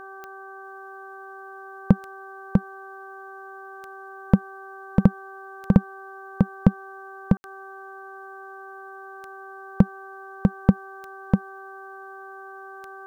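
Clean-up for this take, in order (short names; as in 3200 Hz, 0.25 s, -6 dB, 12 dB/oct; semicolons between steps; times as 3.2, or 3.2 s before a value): de-click; de-hum 387.3 Hz, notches 4; room tone fill 7.37–7.44; inverse comb 0.647 s -3 dB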